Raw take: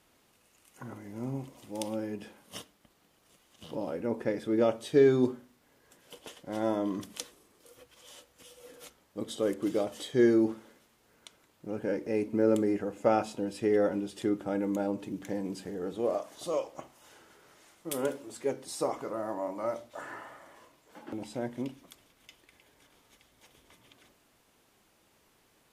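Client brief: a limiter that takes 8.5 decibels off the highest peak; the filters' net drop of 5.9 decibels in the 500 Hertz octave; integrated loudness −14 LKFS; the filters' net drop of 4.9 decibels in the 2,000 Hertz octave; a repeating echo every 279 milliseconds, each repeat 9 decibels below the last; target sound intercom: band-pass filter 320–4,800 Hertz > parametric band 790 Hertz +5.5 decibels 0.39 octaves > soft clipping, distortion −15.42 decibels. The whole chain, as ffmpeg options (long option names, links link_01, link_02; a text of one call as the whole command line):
ffmpeg -i in.wav -af "equalizer=frequency=500:width_type=o:gain=-6.5,equalizer=frequency=2000:width_type=o:gain=-6,alimiter=limit=-23.5dB:level=0:latency=1,highpass=320,lowpass=4800,equalizer=frequency=790:width_type=o:width=0.39:gain=5.5,aecho=1:1:279|558|837|1116:0.355|0.124|0.0435|0.0152,asoftclip=threshold=-30dB,volume=27dB" out.wav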